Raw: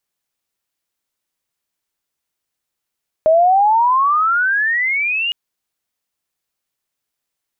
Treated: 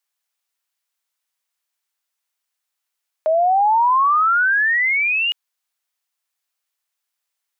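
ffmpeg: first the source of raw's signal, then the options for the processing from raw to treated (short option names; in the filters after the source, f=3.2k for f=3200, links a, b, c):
-f lavfi -i "aevalsrc='pow(10,(-8-8.5*t/2.06)/20)*sin(2*PI*620*2.06/log(2900/620)*(exp(log(2900/620)*t/2.06)-1))':d=2.06:s=44100"
-af "highpass=780"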